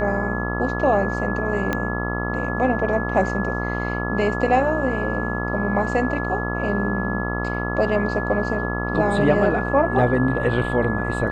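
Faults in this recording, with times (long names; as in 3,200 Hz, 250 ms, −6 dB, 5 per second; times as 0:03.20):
mains buzz 60 Hz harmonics 23 −26 dBFS
whistle 1,700 Hz −28 dBFS
0:01.73: click −9 dBFS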